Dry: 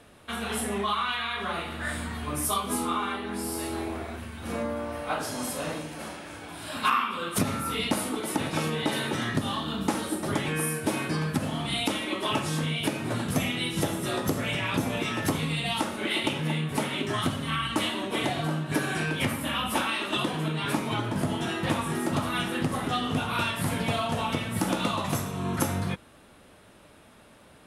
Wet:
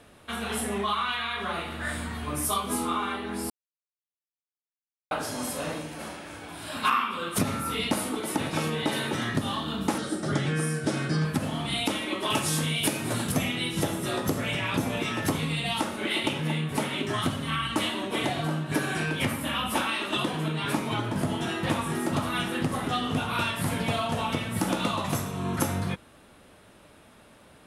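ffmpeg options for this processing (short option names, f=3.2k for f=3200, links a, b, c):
-filter_complex "[0:a]asettb=1/sr,asplit=3[a][b][c];[a]atrim=end=9.984[d];[b]atrim=start=9.98:end=11.25,asetpts=PTS-STARTPTS,afade=t=in:d=0.004:c=qsin,afade=t=out:st=1.266:d=0.004:c=qsin,highpass=100,equalizer=f=140:t=q:w=4:g=9,equalizer=f=970:t=q:w=4:g=-9,equalizer=f=1.4k:t=q:w=4:g=4,equalizer=f=2.5k:t=q:w=4:g=-6,equalizer=f=5.3k:t=q:w=4:g=4,lowpass=f=9k:w=0.5412,lowpass=f=9k:w=1.3066[e];[c]atrim=start=11.246[f];[d][e]acrossfade=d=0.004:c1=hsin:c2=qsin[g];[g][f]acrossfade=d=0.004:c1=qsin:c2=hsin,asettb=1/sr,asplit=3[h][i][j];[h]atrim=end=12.304[k];[i]atrim=start=12.3:end=13.32,asetpts=PTS-STARTPTS,afade=t=in:d=0.004:c=qsin,afade=t=out:st=1.016:d=0.004:c=qsin,highshelf=f=5.2k:g=12[l];[j]atrim=start=13.316[m];[k][l]acrossfade=d=0.004:c1=hsin:c2=qsin[n];[n][m]acrossfade=d=0.004:c1=qsin:c2=hsin,asplit=3[o][p][q];[o]atrim=end=3.5,asetpts=PTS-STARTPTS,afade=t=out:st=3.496:d=0.004:c=hsin[r];[p]atrim=start=3.5:end=5.11,asetpts=PTS-STARTPTS,volume=0[s];[q]atrim=start=5.11,asetpts=PTS-STARTPTS,afade=t=in:d=0.004:c=hsin[t];[r][s][t]concat=n=3:v=0:a=1"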